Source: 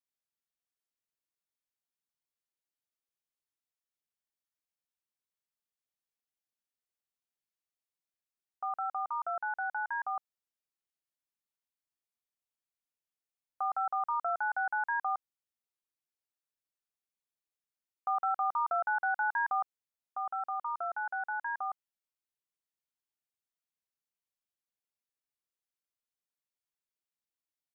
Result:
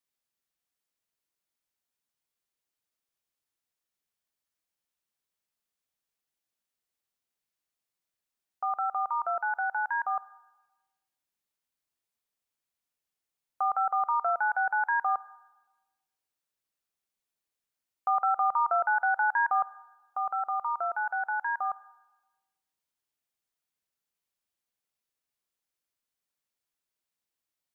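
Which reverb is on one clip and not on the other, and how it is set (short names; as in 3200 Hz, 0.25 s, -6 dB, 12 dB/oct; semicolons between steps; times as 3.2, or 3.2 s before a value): Schroeder reverb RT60 1.2 s, combs from 32 ms, DRR 20 dB; gain +5 dB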